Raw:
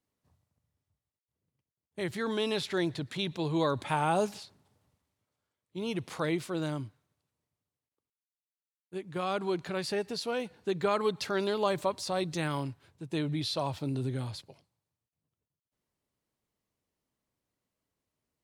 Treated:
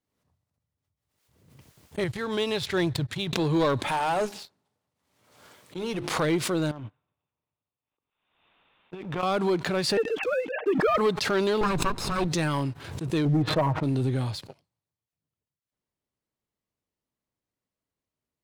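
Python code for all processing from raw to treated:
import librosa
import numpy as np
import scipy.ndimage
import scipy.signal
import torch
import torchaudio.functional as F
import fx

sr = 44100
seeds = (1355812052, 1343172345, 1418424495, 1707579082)

y = fx.chain(x, sr, fx.low_shelf_res(hz=150.0, db=10.0, q=1.5),
    fx.upward_expand(threshold_db=-51.0, expansion=2.5), at=(2.04, 3.33))
y = fx.chain(y, sr, fx.highpass(hz=230.0, slope=6),
    fx.hum_notches(base_hz=50, count=8),
    fx.tube_stage(drive_db=28.0, bias=0.4), at=(3.87, 6.14))
y = fx.chain(y, sr, fx.over_compress(threshold_db=-41.0, ratio=-1.0),
    fx.cheby_ripple(hz=3700.0, ripple_db=6), at=(6.71, 9.23))
y = fx.chain(y, sr, fx.sine_speech(),
    fx.comb(ms=6.5, depth=0.44), at=(9.97, 10.98))
y = fx.chain(y, sr, fx.lower_of_two(delay_ms=0.77),
    fx.lowpass(hz=11000.0, slope=12),
    fx.tilt_shelf(db=4.0, hz=1300.0), at=(11.61, 12.28))
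y = fx.chain(y, sr, fx.lowpass(hz=1500.0, slope=24),
    fx.comb(ms=6.4, depth=0.8), at=(13.25, 13.83))
y = fx.high_shelf(y, sr, hz=7700.0, db=-4.5)
y = fx.leveller(y, sr, passes=2)
y = fx.pre_swell(y, sr, db_per_s=60.0)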